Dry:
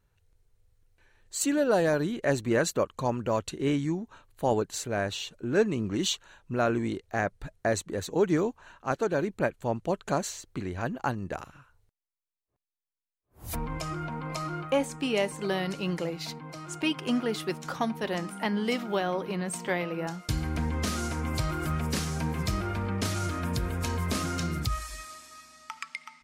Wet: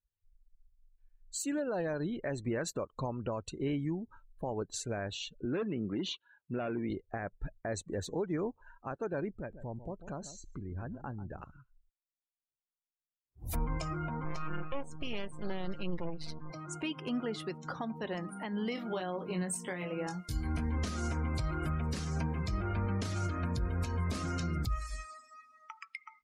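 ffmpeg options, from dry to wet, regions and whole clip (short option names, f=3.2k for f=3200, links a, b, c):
-filter_complex "[0:a]asettb=1/sr,asplit=3[a][b][c];[a]atrim=end=5.454[d];[b]atrim=start=5.45:end=6.9,asetpts=PTS-STARTPTS,afade=t=in:d=0.004:c=qsin,afade=t=out:st=1.446:d=0.004:c=qsin,asoftclip=type=hard:threshold=-23dB,highpass=150,lowpass=3.7k[e];[c]atrim=start=6.896[f];[d][e]acrossfade=d=0.004:c1=hsin:c2=qsin[g];[g][f]acrossfade=d=0.004:c1=qsin:c2=hsin,asettb=1/sr,asplit=3[h][i][j];[h]atrim=end=9.354[k];[i]atrim=start=9.35:end=11.42,asetpts=PTS-STARTPTS,afade=t=in:d=0.004:c=qsin,afade=t=out:st=2.066:d=0.004:c=qsin,lowshelf=f=150:g=7,acompressor=threshold=-44dB:ratio=2:attack=3.2:release=140:knee=1:detection=peak,aecho=1:1:143:0.266,atrim=end_sample=91287[l];[j]atrim=start=11.416[m];[k][l]acrossfade=d=0.004:c1=hsin:c2=qsin[n];[n][m]acrossfade=d=0.004:c1=qsin:c2=hsin,asettb=1/sr,asplit=3[o][p][q];[o]atrim=end=14.244[r];[p]atrim=start=14.24:end=16.5,asetpts=PTS-STARTPTS,afade=t=in:d=0.004:c=qsin,afade=t=out:st=2.256:d=0.004:c=qsin,aecho=1:1:5.7:0.48,atrim=end_sample=99666,aeval=exprs='max(val(0),0)':c=same[s];[q]atrim=start=16.496[t];[r][s]acrossfade=d=0.004:c1=hsin:c2=qsin[u];[u][t]acrossfade=d=0.004:c1=qsin:c2=hsin,asettb=1/sr,asplit=3[v][w][x];[v]atrim=end=18.754[y];[w]atrim=start=18.75:end=20.78,asetpts=PTS-STARTPTS,afade=t=in:d=0.004:c=qsin,afade=t=out:st=2.026:d=0.004:c=qsin,highshelf=f=6.5k:g=11.5,asplit=2[z][aa];[aa]adelay=22,volume=-5dB[ab];[z][ab]amix=inputs=2:normalize=0,atrim=end_sample=89523[ac];[x]atrim=start=20.776[ad];[y][ac]acrossfade=d=0.004:c1=hsin:c2=qsin[ae];[ae][ad]acrossfade=d=0.004:c1=qsin:c2=hsin,alimiter=limit=-23.5dB:level=0:latency=1:release=237,afftdn=nr=27:nf=-46,lowshelf=f=69:g=9.5,volume=-3dB"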